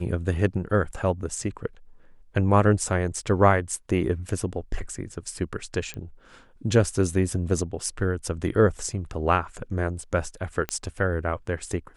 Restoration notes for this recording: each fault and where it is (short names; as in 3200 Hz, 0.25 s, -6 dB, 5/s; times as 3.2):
5.94 pop -21 dBFS
10.69 pop -12 dBFS